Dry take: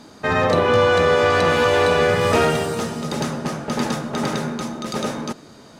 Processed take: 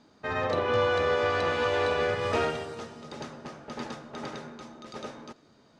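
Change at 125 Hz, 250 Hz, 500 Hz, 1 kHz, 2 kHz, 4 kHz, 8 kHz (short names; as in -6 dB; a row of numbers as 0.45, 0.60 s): -13.5, -14.5, -10.0, -10.0, -10.0, -10.5, -17.0 dB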